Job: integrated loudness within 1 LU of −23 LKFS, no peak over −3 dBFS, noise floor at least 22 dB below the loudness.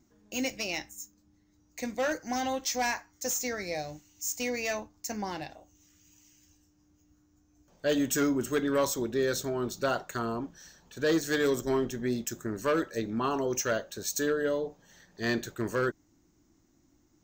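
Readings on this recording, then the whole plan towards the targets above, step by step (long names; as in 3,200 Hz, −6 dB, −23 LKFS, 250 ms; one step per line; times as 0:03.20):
integrated loudness −31.0 LKFS; sample peak −19.0 dBFS; target loudness −23.0 LKFS
→ level +8 dB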